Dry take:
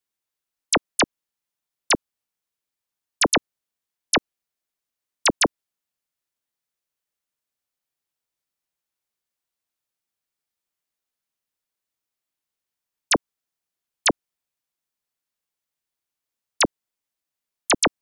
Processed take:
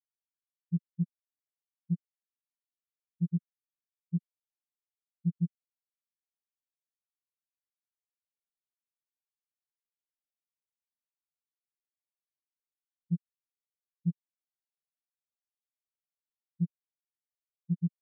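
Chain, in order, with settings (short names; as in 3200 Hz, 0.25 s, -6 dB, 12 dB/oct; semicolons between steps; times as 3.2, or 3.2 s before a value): sample sorter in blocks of 256 samples; spectral expander 4:1; gain -7.5 dB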